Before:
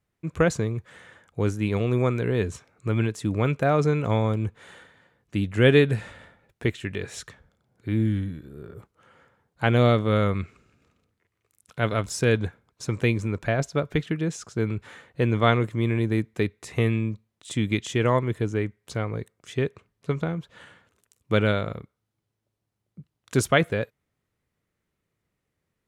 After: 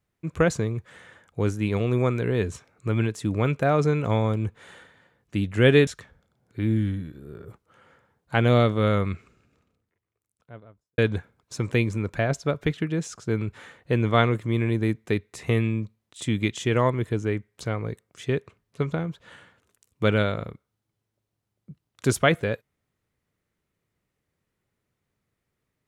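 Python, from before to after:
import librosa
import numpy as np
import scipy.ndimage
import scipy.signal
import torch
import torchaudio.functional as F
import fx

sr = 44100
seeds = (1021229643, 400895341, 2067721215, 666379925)

y = fx.studio_fade_out(x, sr, start_s=10.37, length_s=1.9)
y = fx.edit(y, sr, fx.cut(start_s=5.87, length_s=1.29), tone=tone)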